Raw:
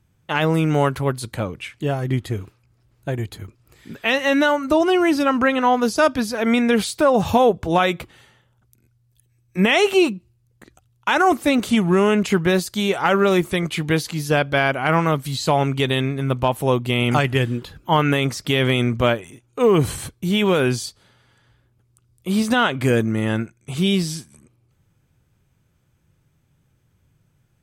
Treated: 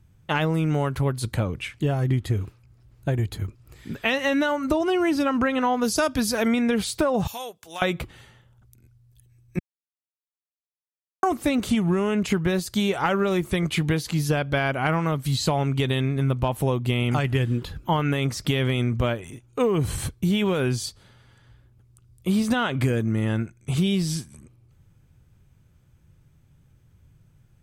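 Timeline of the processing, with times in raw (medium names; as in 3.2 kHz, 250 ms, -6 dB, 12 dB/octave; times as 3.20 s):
5.84–6.48 s: treble shelf 4.6 kHz +9.5 dB
7.27–7.82 s: differentiator
9.59–11.23 s: mute
whole clip: bass shelf 130 Hz +10.5 dB; compression, threshold -19 dBFS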